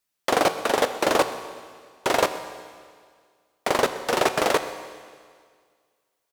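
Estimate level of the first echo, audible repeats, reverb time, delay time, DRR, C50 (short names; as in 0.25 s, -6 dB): -19.5 dB, 1, 1.9 s, 0.127 s, 9.5 dB, 10.5 dB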